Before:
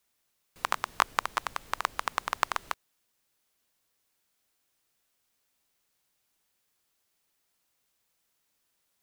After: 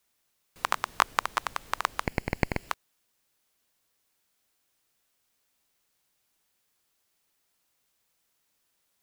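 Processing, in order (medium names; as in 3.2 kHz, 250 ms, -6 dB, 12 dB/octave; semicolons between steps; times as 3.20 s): 2.06–2.69 s: comb filter that takes the minimum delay 0.4 ms; trim +1.5 dB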